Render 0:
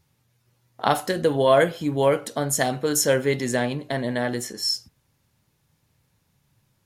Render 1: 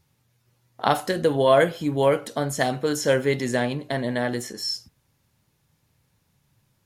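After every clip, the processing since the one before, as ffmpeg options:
ffmpeg -i in.wav -filter_complex "[0:a]acrossover=split=5000[link_01][link_02];[link_02]acompressor=threshold=-33dB:ratio=4:attack=1:release=60[link_03];[link_01][link_03]amix=inputs=2:normalize=0" out.wav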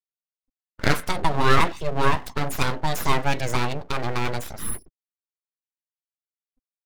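ffmpeg -i in.wav -af "afftfilt=real='re*gte(hypot(re,im),0.01)':imag='im*gte(hypot(re,im),0.01)':win_size=1024:overlap=0.75,aeval=exprs='abs(val(0))':channel_layout=same,volume=2.5dB" out.wav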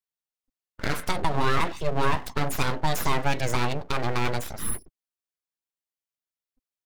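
ffmpeg -i in.wav -af "alimiter=limit=-11dB:level=0:latency=1:release=118" out.wav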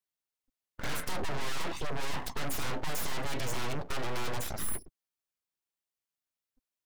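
ffmpeg -i in.wav -af "asoftclip=type=hard:threshold=-26.5dB" out.wav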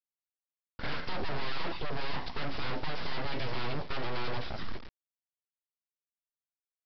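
ffmpeg -i in.wav -af "aecho=1:1:115|230|345:0.0841|0.0362|0.0156,aresample=11025,acrusher=bits=5:dc=4:mix=0:aa=0.000001,aresample=44100" out.wav

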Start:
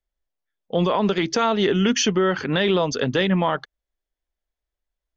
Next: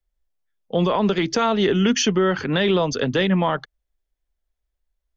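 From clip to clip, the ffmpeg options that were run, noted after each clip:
ffmpeg -i in.wav -filter_complex "[0:a]lowshelf=frequency=110:gain=9.5,acrossover=split=140|1000|2200[link_01][link_02][link_03][link_04];[link_01]alimiter=level_in=10dB:limit=-24dB:level=0:latency=1,volume=-10dB[link_05];[link_05][link_02][link_03][link_04]amix=inputs=4:normalize=0" out.wav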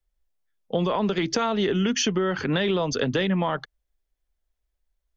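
ffmpeg -i in.wav -af "acompressor=threshold=-20dB:ratio=6" out.wav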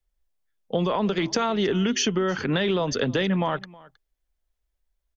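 ffmpeg -i in.wav -af "aecho=1:1:317:0.075" out.wav

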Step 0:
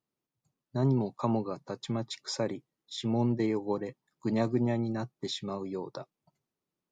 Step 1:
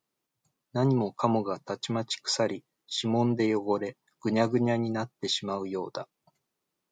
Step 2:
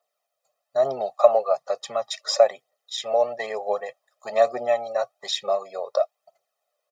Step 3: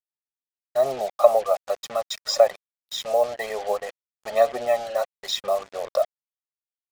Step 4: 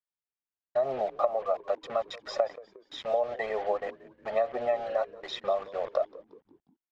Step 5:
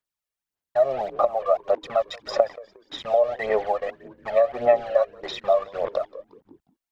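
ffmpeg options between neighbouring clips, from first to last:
ffmpeg -i in.wav -af "lowshelf=frequency=370:gain=-8,volume=7.5dB" out.wav
ffmpeg -i in.wav -af "highpass=frequency=640:width_type=q:width=4,aecho=1:1:1.6:0.94,aphaser=in_gain=1:out_gain=1:delay=2.1:decay=0.43:speed=1.1:type=triangular,volume=-2dB" out.wav
ffmpeg -i in.wav -af "acrusher=bits=5:mix=0:aa=0.5" out.wav
ffmpeg -i in.wav -filter_complex "[0:a]lowpass=2300,acompressor=threshold=-21dB:ratio=12,asplit=5[link_01][link_02][link_03][link_04][link_05];[link_02]adelay=179,afreqshift=-92,volume=-19.5dB[link_06];[link_03]adelay=358,afreqshift=-184,volume=-26.2dB[link_07];[link_04]adelay=537,afreqshift=-276,volume=-33dB[link_08];[link_05]adelay=716,afreqshift=-368,volume=-39.7dB[link_09];[link_01][link_06][link_07][link_08][link_09]amix=inputs=5:normalize=0,volume=-1.5dB" out.wav
ffmpeg -i in.wav -af "aphaser=in_gain=1:out_gain=1:delay=1.8:decay=0.56:speed=1.7:type=sinusoidal,volume=3.5dB" out.wav

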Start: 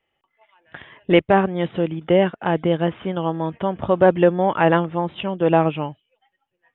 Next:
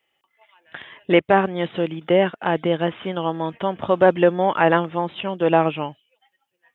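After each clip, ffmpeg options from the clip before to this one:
ffmpeg -i in.wav -filter_complex "[0:a]highpass=frequency=210:poles=1,acrossover=split=2600[link_01][link_02];[link_02]acompressor=threshold=-42dB:ratio=4:attack=1:release=60[link_03];[link_01][link_03]amix=inputs=2:normalize=0,highshelf=frequency=2900:gain=10" out.wav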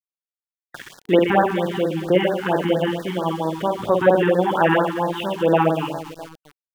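ffmpeg -i in.wav -af "aecho=1:1:50|125|237.5|406.2|659.4:0.631|0.398|0.251|0.158|0.1,aeval=exprs='val(0)*gte(abs(val(0)),0.015)':channel_layout=same,afftfilt=real='re*(1-between(b*sr/1024,520*pow(2700/520,0.5+0.5*sin(2*PI*4.4*pts/sr))/1.41,520*pow(2700/520,0.5+0.5*sin(2*PI*4.4*pts/sr))*1.41))':imag='im*(1-between(b*sr/1024,520*pow(2700/520,0.5+0.5*sin(2*PI*4.4*pts/sr))/1.41,520*pow(2700/520,0.5+0.5*sin(2*PI*4.4*pts/sr))*1.41))':win_size=1024:overlap=0.75" out.wav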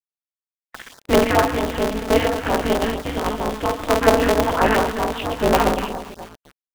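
ffmpeg -i in.wav -af "aeval=exprs='val(0)*sgn(sin(2*PI*110*n/s))':channel_layout=same" out.wav

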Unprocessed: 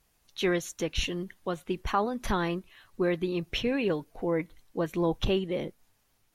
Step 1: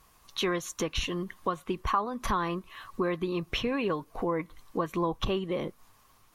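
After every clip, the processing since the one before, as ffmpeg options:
ffmpeg -i in.wav -af "equalizer=frequency=1100:width_type=o:width=0.36:gain=14.5,acompressor=threshold=-39dB:ratio=2.5,volume=7.5dB" out.wav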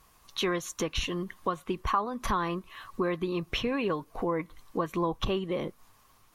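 ffmpeg -i in.wav -af anull out.wav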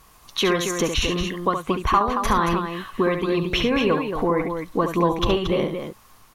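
ffmpeg -i in.wav -af "aecho=1:1:69.97|227.4:0.447|0.447,volume=8dB" -ar 44100 -c:a sbc -b:a 192k out.sbc

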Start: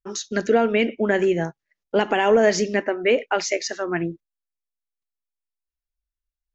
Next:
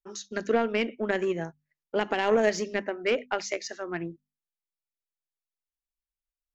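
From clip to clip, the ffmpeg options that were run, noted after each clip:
ffmpeg -i in.wav -af "aeval=exprs='0.447*(cos(1*acos(clip(val(0)/0.447,-1,1)))-cos(1*PI/2))+0.0631*(cos(3*acos(clip(val(0)/0.447,-1,1)))-cos(3*PI/2))':channel_layout=same,bandreject=frequency=50:width_type=h:width=6,bandreject=frequency=100:width_type=h:width=6,bandreject=frequency=150:width_type=h:width=6,bandreject=frequency=200:width_type=h:width=6,bandreject=frequency=250:width_type=h:width=6,volume=-4.5dB" out.wav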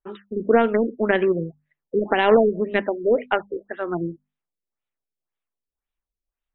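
ffmpeg -i in.wav -af "afftfilt=real='re*lt(b*sr/1024,510*pow(4100/510,0.5+0.5*sin(2*PI*1.9*pts/sr)))':imag='im*lt(b*sr/1024,510*pow(4100/510,0.5+0.5*sin(2*PI*1.9*pts/sr)))':win_size=1024:overlap=0.75,volume=8dB" out.wav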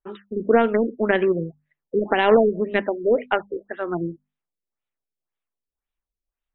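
ffmpeg -i in.wav -af anull out.wav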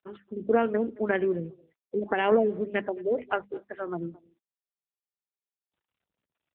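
ffmpeg -i in.wav -filter_complex "[0:a]asplit=2[link_01][link_02];[link_02]adelay=220,highpass=300,lowpass=3400,asoftclip=type=hard:threshold=-12.5dB,volume=-22dB[link_03];[link_01][link_03]amix=inputs=2:normalize=0,volume=-6dB" -ar 8000 -c:a libopencore_amrnb -b:a 7950 out.amr

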